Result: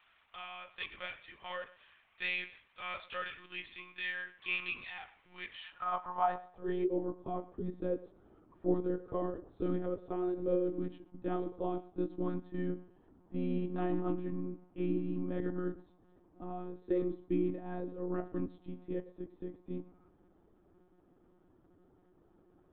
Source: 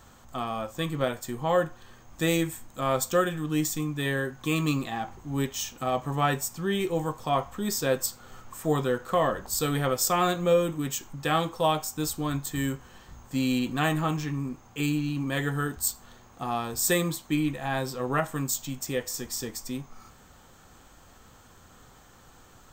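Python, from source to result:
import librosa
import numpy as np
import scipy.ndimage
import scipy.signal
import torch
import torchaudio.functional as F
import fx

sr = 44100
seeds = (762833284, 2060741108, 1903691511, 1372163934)

p1 = fx.filter_sweep_bandpass(x, sr, from_hz=2400.0, to_hz=310.0, start_s=5.4, end_s=7.09, q=3.0)
p2 = p1 + fx.echo_feedback(p1, sr, ms=110, feedback_pct=20, wet_db=-18.5, dry=0)
y = fx.lpc_monotone(p2, sr, seeds[0], pitch_hz=180.0, order=16)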